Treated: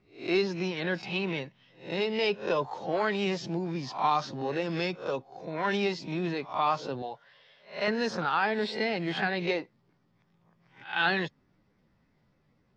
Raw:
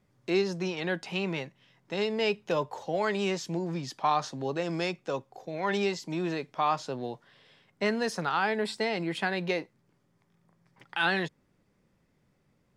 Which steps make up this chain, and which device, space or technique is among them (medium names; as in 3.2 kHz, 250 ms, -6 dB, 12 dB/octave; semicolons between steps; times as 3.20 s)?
reverse spectral sustain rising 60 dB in 0.37 s; clip after many re-uploads (low-pass 5.4 kHz 24 dB/octave; coarse spectral quantiser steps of 15 dB); 7.02–7.88 s: resonant low shelf 450 Hz -9 dB, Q 1.5